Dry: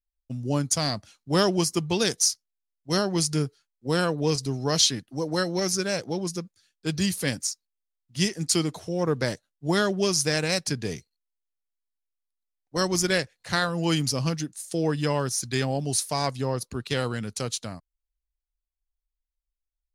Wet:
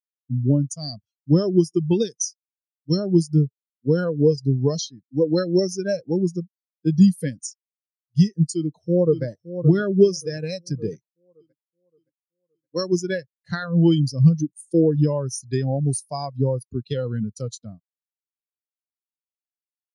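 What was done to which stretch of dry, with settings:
0:08.54–0:09.24: delay throw 570 ms, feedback 65%, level −7.5 dB
0:10.89–0:12.93: low-shelf EQ 150 Hz −8 dB
whole clip: high-shelf EQ 2,900 Hz +5.5 dB; downward compressor 12 to 1, threshold −24 dBFS; every bin expanded away from the loudest bin 2.5 to 1; level +6 dB

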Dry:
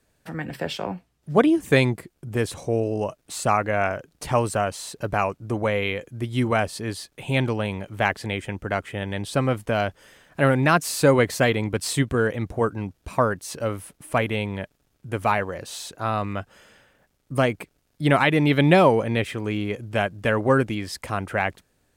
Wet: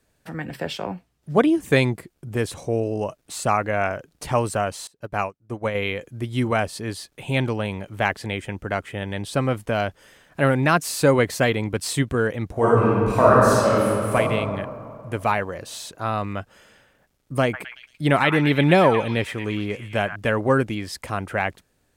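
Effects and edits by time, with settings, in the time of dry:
0:04.87–0:05.75: expander for the loud parts 2.5 to 1, over −35 dBFS
0:12.52–0:14.15: thrown reverb, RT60 2.5 s, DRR −8.5 dB
0:17.42–0:20.16: echo through a band-pass that steps 113 ms, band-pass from 1,400 Hz, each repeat 0.7 octaves, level −5 dB

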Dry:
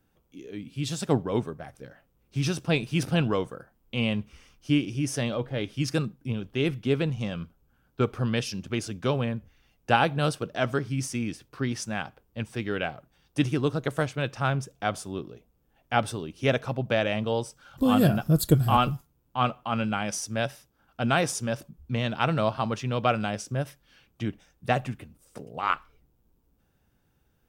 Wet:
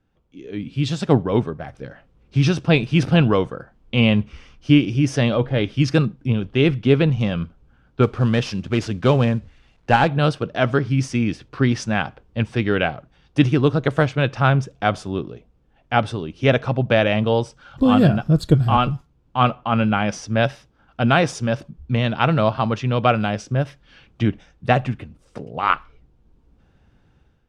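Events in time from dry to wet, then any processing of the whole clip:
0:08.03–0:10.08: variable-slope delta modulation 64 kbit/s
0:19.55–0:20.43: high-shelf EQ 5,800 Hz −9.5 dB
whole clip: low-pass filter 4,300 Hz 12 dB per octave; low-shelf EQ 130 Hz +4 dB; automatic gain control gain up to 11.5 dB; level −1 dB

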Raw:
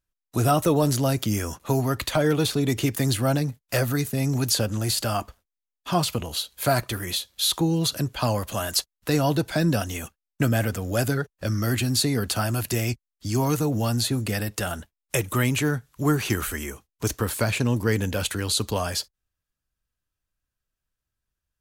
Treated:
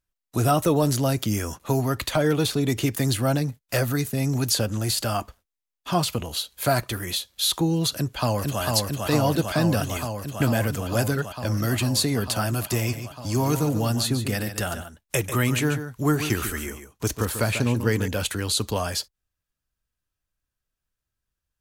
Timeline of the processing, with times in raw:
0:07.93–0:08.62: delay throw 450 ms, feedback 85%, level −2.5 dB
0:12.78–0:18.08: single-tap delay 142 ms −10 dB

